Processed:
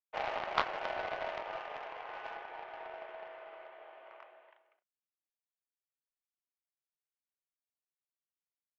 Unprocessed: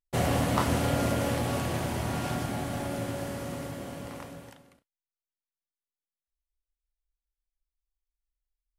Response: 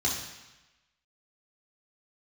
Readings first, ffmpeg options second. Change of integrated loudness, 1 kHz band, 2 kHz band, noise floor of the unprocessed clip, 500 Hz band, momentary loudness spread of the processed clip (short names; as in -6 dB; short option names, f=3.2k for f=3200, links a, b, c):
-9.5 dB, -5.0 dB, -4.5 dB, under -85 dBFS, -9.5 dB, 19 LU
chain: -af "asoftclip=type=hard:threshold=-20.5dB,highpass=f=450:t=q:w=0.5412,highpass=f=450:t=q:w=1.307,lowpass=f=2.8k:t=q:w=0.5176,lowpass=f=2.8k:t=q:w=0.7071,lowpass=f=2.8k:t=q:w=1.932,afreqshift=89,aeval=exprs='0.158*(cos(1*acos(clip(val(0)/0.158,-1,1)))-cos(1*PI/2))+0.00282*(cos(2*acos(clip(val(0)/0.158,-1,1)))-cos(2*PI/2))+0.0447*(cos(3*acos(clip(val(0)/0.158,-1,1)))-cos(3*PI/2))':c=same,volume=6.5dB"